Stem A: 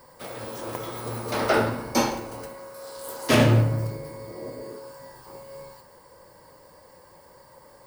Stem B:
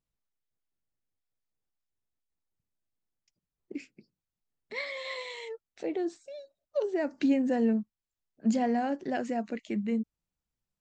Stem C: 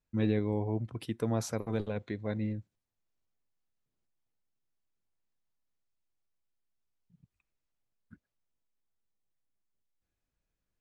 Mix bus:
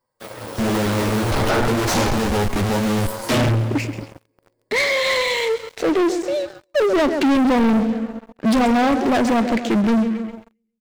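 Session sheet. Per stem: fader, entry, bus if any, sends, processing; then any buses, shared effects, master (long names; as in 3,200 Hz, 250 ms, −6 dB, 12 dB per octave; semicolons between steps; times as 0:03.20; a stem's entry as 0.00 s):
−12.5 dB, 0.00 s, no send, echo send −17 dB, flanger 0.59 Hz, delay 8 ms, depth 4 ms, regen −2%; soft clipping −15.5 dBFS, distortion −15 dB; automatic ducking −15 dB, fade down 0.20 s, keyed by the second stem
−1.5 dB, 0.00 s, no send, echo send −14 dB, no processing
+2.0 dB, 0.45 s, no send, echo send −18.5 dB, high-shelf EQ 3,800 Hz −8 dB; comparator with hysteresis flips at −46 dBFS; string-ensemble chorus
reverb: not used
echo: repeating echo 134 ms, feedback 50%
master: leveller curve on the samples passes 5; automatic gain control gain up to 4.5 dB; highs frequency-modulated by the lows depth 0.34 ms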